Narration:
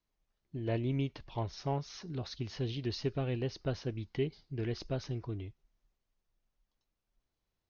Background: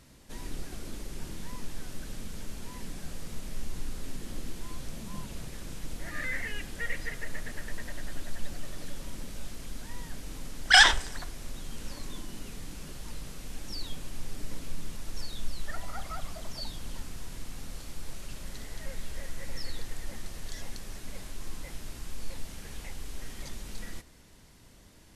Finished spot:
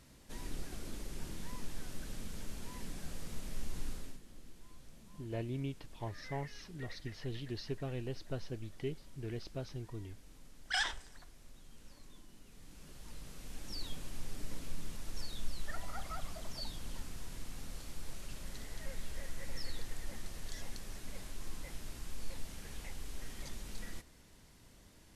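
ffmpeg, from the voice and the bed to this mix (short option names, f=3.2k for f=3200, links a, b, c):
-filter_complex "[0:a]adelay=4650,volume=-6dB[a];[1:a]volume=8.5dB,afade=t=out:st=3.9:d=0.31:silence=0.223872,afade=t=in:st=12.47:d=1.38:silence=0.237137[b];[a][b]amix=inputs=2:normalize=0"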